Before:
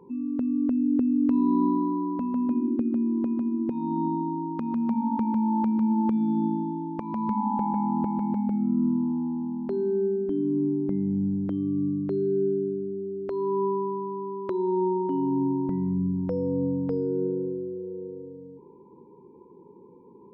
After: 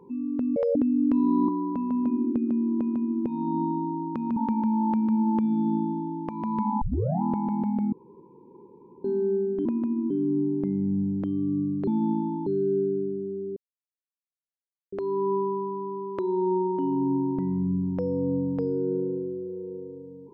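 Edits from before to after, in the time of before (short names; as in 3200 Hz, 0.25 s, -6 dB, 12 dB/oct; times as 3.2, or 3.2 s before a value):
0.56–0.93 speed 191%
1.66–1.92 cut
3.21–3.66 copy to 10.36
4.8–5.07 cut
6.22–6.81 copy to 12.13
7.52 tape start 0.41 s
8.63–9.75 room tone
13.23 insert silence 1.36 s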